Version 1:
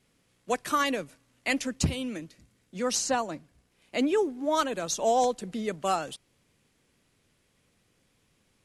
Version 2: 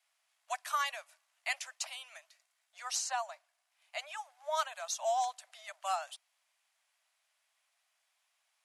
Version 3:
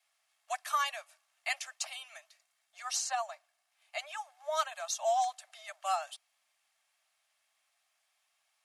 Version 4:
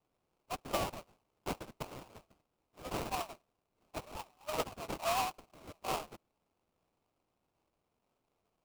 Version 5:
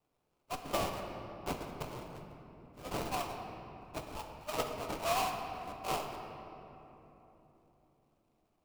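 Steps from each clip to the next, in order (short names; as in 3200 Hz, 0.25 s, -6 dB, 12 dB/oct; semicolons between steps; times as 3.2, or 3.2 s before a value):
steep high-pass 620 Hz 96 dB/oct; gain -6 dB
notch comb 490 Hz; gain +2.5 dB
sample-rate reducer 1800 Hz, jitter 20%; gain -4 dB
shoebox room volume 210 m³, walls hard, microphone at 0.33 m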